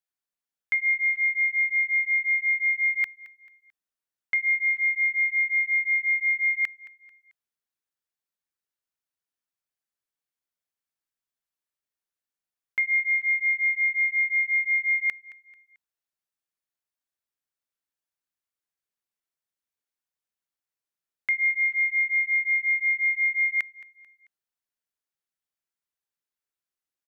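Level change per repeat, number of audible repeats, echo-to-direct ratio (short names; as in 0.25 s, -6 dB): -8.0 dB, 2, -18.5 dB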